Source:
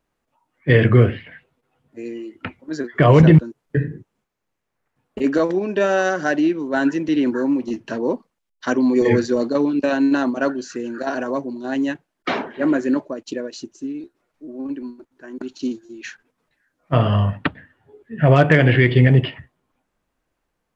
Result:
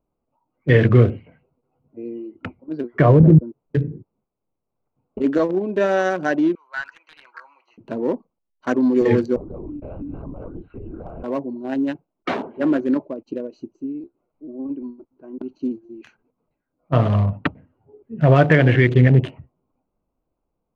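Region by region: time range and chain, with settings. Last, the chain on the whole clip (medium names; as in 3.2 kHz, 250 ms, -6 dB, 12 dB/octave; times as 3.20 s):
2.13–3.47 s: low-pass that closes with the level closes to 480 Hz, closed at -6.5 dBFS + brick-wall FIR low-pass 5.6 kHz
6.55–7.78 s: high-pass 1.3 kHz 24 dB/octave + treble shelf 3 kHz +3.5 dB + overdrive pedal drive 11 dB, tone 1.7 kHz, clips at -13.5 dBFS
9.36–11.24 s: compression 10:1, threshold -29 dBFS + LPC vocoder at 8 kHz whisper
whole clip: local Wiener filter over 25 samples; treble shelf 3.9 kHz -6 dB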